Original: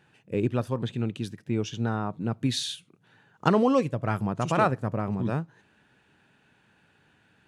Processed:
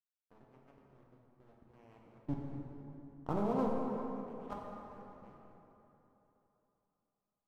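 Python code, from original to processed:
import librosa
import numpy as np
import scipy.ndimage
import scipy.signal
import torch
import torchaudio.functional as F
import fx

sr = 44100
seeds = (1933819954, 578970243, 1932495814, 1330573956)

y = np.where(x < 0.0, 10.0 ** (-12.0 / 20.0) * x, x)
y = fx.doppler_pass(y, sr, speed_mps=22, closest_m=7.2, pass_at_s=2.93)
y = scipy.signal.sosfilt(scipy.signal.butter(6, 1300.0, 'lowpass', fs=sr, output='sos'), y)
y = fx.low_shelf(y, sr, hz=460.0, db=-3.0)
y = fx.level_steps(y, sr, step_db=19)
y = np.sign(y) * np.maximum(np.abs(y) - 10.0 ** (-55.5 / 20.0), 0.0)
y = fx.rev_plate(y, sr, seeds[0], rt60_s=3.3, hf_ratio=0.55, predelay_ms=0, drr_db=-2.0)
y = fx.echo_warbled(y, sr, ms=197, feedback_pct=69, rate_hz=2.8, cents=110, wet_db=-21.0)
y = y * 10.0 ** (3.5 / 20.0)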